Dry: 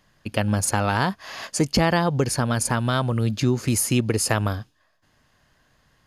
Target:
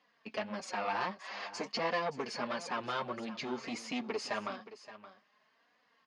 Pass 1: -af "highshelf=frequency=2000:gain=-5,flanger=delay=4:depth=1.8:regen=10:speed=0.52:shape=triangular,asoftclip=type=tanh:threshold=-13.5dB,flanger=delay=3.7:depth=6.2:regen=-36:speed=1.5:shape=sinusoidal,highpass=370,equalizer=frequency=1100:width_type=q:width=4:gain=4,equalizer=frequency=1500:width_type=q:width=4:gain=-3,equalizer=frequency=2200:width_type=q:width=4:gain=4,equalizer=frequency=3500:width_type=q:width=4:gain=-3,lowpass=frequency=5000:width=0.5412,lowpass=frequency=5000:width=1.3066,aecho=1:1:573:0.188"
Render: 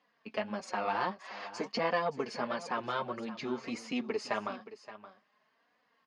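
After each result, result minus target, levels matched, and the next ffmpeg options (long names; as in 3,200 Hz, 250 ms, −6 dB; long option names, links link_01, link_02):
soft clipping: distortion −12 dB; 4,000 Hz band −3.5 dB
-af "highshelf=frequency=2000:gain=-5,flanger=delay=4:depth=1.8:regen=10:speed=0.52:shape=triangular,asoftclip=type=tanh:threshold=-23dB,flanger=delay=3.7:depth=6.2:regen=-36:speed=1.5:shape=sinusoidal,highpass=370,equalizer=frequency=1100:width_type=q:width=4:gain=4,equalizer=frequency=1500:width_type=q:width=4:gain=-3,equalizer=frequency=2200:width_type=q:width=4:gain=4,equalizer=frequency=3500:width_type=q:width=4:gain=-3,lowpass=frequency=5000:width=0.5412,lowpass=frequency=5000:width=1.3066,aecho=1:1:573:0.188"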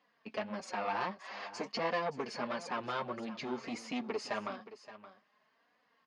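4,000 Hz band −2.0 dB
-af "flanger=delay=4:depth=1.8:regen=10:speed=0.52:shape=triangular,asoftclip=type=tanh:threshold=-23dB,flanger=delay=3.7:depth=6.2:regen=-36:speed=1.5:shape=sinusoidal,highpass=370,equalizer=frequency=1100:width_type=q:width=4:gain=4,equalizer=frequency=1500:width_type=q:width=4:gain=-3,equalizer=frequency=2200:width_type=q:width=4:gain=4,equalizer=frequency=3500:width_type=q:width=4:gain=-3,lowpass=frequency=5000:width=0.5412,lowpass=frequency=5000:width=1.3066,aecho=1:1:573:0.188"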